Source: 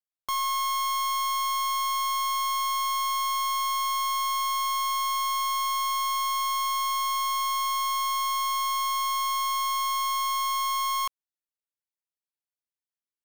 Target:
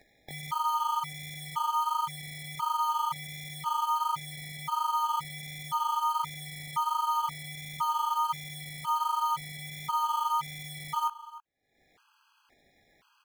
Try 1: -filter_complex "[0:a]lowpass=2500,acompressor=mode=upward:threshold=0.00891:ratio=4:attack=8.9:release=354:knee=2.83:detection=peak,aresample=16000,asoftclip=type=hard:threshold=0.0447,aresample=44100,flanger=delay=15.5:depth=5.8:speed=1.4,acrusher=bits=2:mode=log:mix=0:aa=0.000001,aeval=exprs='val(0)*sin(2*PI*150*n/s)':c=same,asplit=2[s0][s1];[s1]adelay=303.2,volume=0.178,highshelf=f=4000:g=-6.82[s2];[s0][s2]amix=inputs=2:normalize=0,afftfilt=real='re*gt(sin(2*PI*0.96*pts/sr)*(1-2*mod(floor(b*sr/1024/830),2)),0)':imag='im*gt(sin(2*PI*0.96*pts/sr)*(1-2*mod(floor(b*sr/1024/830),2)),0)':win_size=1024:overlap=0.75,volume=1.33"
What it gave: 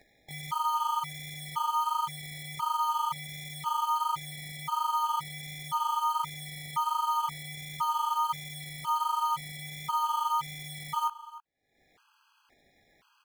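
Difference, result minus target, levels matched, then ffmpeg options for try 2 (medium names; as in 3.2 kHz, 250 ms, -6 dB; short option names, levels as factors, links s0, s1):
hard clipper: distortion +25 dB
-filter_complex "[0:a]lowpass=2500,acompressor=mode=upward:threshold=0.00891:ratio=4:attack=8.9:release=354:knee=2.83:detection=peak,aresample=16000,asoftclip=type=hard:threshold=0.178,aresample=44100,flanger=delay=15.5:depth=5.8:speed=1.4,acrusher=bits=2:mode=log:mix=0:aa=0.000001,aeval=exprs='val(0)*sin(2*PI*150*n/s)':c=same,asplit=2[s0][s1];[s1]adelay=303.2,volume=0.178,highshelf=f=4000:g=-6.82[s2];[s0][s2]amix=inputs=2:normalize=0,afftfilt=real='re*gt(sin(2*PI*0.96*pts/sr)*(1-2*mod(floor(b*sr/1024/830),2)),0)':imag='im*gt(sin(2*PI*0.96*pts/sr)*(1-2*mod(floor(b*sr/1024/830),2)),0)':win_size=1024:overlap=0.75,volume=1.33"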